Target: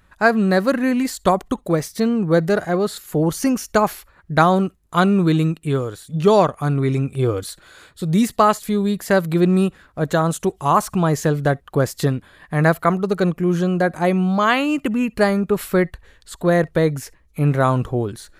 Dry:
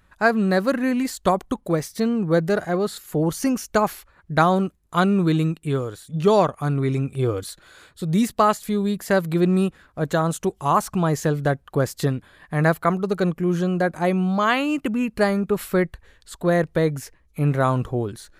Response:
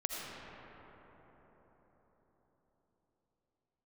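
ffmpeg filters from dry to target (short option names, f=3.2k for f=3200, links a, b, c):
-filter_complex "[0:a]asplit=2[a][b];[1:a]atrim=start_sample=2205,atrim=end_sample=3087[c];[b][c]afir=irnorm=-1:irlink=0,volume=-13.5dB[d];[a][d]amix=inputs=2:normalize=0,volume=1.5dB"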